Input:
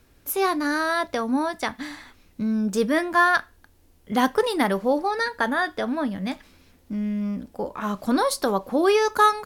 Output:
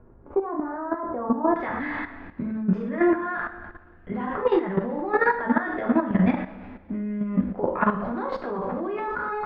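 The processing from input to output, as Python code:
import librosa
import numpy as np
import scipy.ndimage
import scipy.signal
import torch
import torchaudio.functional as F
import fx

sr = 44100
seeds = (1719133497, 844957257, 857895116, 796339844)

y = fx.over_compress(x, sr, threshold_db=-28.0, ratio=-1.0)
y = fx.rev_double_slope(y, sr, seeds[0], early_s=0.53, late_s=1.9, knee_db=-16, drr_db=-3.0)
y = fx.level_steps(y, sr, step_db=11)
y = fx.lowpass(y, sr, hz=fx.steps((0.0, 1100.0), (1.56, 2100.0)), slope=24)
y = F.gain(torch.from_numpy(y), 4.5).numpy()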